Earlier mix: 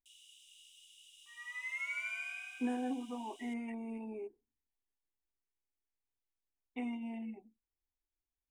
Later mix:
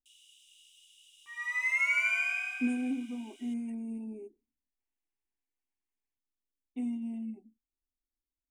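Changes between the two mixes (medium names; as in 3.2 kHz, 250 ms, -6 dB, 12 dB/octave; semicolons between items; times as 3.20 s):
speech: add graphic EQ 125/250/500/1000/2000/4000/8000 Hz -6/+8/-4/-11/-11/-3/+10 dB; second sound +11.5 dB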